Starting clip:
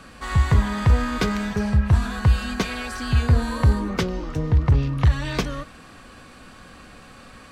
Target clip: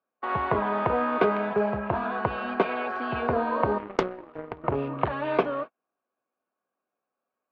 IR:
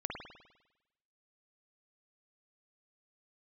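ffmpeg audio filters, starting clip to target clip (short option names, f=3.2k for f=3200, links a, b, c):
-filter_complex "[0:a]agate=range=-42dB:threshold=-33dB:ratio=16:detection=peak,highpass=350,equalizer=f=390:t=q:w=4:g=6,equalizer=f=650:t=q:w=4:g=8,equalizer=f=930:t=q:w=4:g=3,equalizer=f=1.9k:t=q:w=4:g=-10,lowpass=f=2.3k:w=0.5412,lowpass=f=2.3k:w=1.3066,asettb=1/sr,asplit=3[a][b][c];[a]atrim=end=3.784[d];[b]atrim=start=3.78:end=4.64,asetpts=PTS-STARTPTS,afade=t=in:d=0.004:c=qsin,afade=t=out:st=0.856:d=0.004:c=qsin,aeval=exprs='0.376*(cos(1*acos(clip(val(0)/0.376,-1,1)))-cos(1*PI/2))+0.0473*(cos(7*acos(clip(val(0)/0.376,-1,1)))-cos(7*PI/2))':c=same[e];[c]atrim=start=4.636[f];[d][e]acrossfade=d=0.004:c1=hsin:c2=qsin[g];[g][f]acrossfade=d=0.004:c1=qsin:c2=hsin,volume=2.5dB"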